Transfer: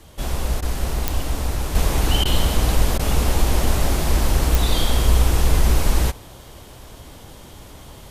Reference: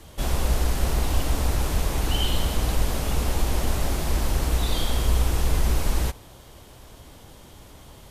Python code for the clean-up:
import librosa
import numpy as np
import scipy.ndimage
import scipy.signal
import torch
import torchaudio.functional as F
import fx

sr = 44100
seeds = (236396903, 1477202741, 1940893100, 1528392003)

y = fx.fix_declick_ar(x, sr, threshold=10.0)
y = fx.fix_interpolate(y, sr, at_s=(0.61, 2.24, 2.98), length_ms=12.0)
y = fx.gain(y, sr, db=fx.steps((0.0, 0.0), (1.75, -5.5)))